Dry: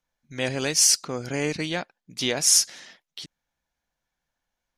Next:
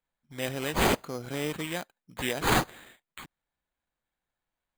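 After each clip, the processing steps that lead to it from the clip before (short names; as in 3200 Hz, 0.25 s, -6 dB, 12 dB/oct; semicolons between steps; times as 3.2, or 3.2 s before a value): sample-rate reducer 5500 Hz, jitter 0%; gain -5.5 dB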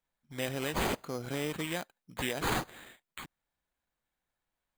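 compressor 3:1, threshold -30 dBFS, peak gain reduction 8.5 dB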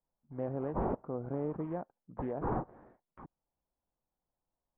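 LPF 1000 Hz 24 dB/oct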